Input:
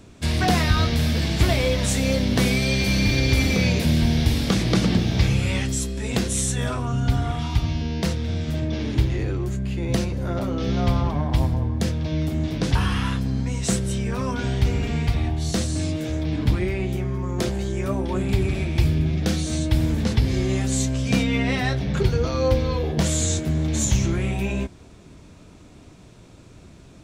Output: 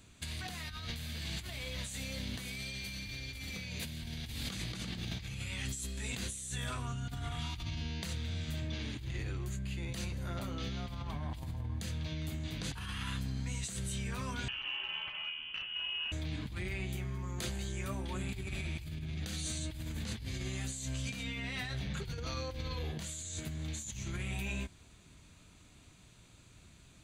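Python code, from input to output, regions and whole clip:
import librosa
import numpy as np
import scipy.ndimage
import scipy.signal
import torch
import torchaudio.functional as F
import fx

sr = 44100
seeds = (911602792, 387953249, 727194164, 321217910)

y = fx.chain(x, sr, fx.bessel_highpass(hz=330.0, order=4),
    fx.freq_invert(carrier_hz=3200),
    fx.transformer_sat(knee_hz=600.0), at=(14.48, 16.12))
y = fx.tone_stack(y, sr, knobs='5-5-5')
y = fx.notch(y, sr, hz=5400.0, q=5.0)
y = fx.over_compress(y, sr, threshold_db=-39.0, ratio=-1.0)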